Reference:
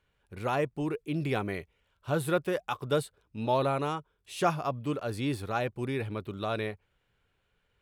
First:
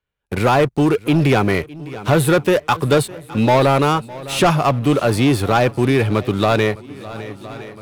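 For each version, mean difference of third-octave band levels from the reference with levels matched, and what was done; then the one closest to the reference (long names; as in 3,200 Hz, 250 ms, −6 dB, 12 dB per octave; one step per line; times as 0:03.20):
4.5 dB: noise gate with hold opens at −56 dBFS
leveller curve on the samples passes 3
on a send: feedback echo with a long and a short gap by turns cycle 1,013 ms, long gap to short 1.5 to 1, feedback 40%, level −22 dB
on the sum: multiband upward and downward compressor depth 40%
level +6.5 dB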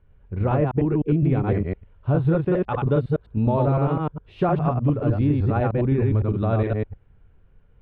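10.5 dB: delay that plays each chunk backwards 102 ms, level −1 dB
spectral tilt −3.5 dB per octave
downward compressor, threshold −21 dBFS, peak gain reduction 7 dB
high-frequency loss of the air 360 metres
level +5.5 dB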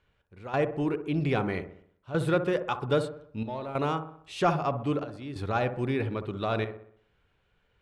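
6.0 dB: in parallel at −5 dB: soft clipping −26 dBFS, distortion −12 dB
on the sum: gate pattern "xx...xxxxxxxxxx" 140 BPM −12 dB
high-frequency loss of the air 81 metres
delay with a low-pass on its return 63 ms, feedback 49%, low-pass 1,300 Hz, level −9 dB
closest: first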